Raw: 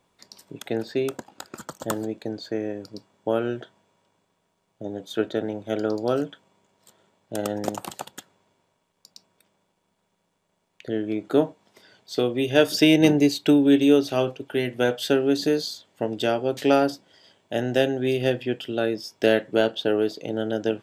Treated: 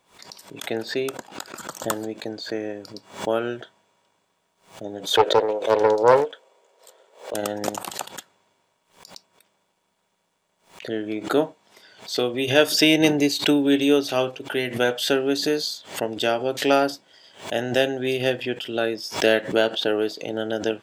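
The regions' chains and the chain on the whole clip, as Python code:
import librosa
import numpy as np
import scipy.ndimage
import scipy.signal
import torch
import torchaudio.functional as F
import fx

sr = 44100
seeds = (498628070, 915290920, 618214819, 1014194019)

y = fx.chain(x, sr, fx.highpass_res(hz=480.0, q=4.5),
    fx.doppler_dist(depth_ms=0.48), at=(5.11, 7.34))
y = fx.low_shelf(y, sr, hz=420.0, db=-9.5)
y = fx.pre_swell(y, sr, db_per_s=140.0)
y = y * librosa.db_to_amplitude(4.0)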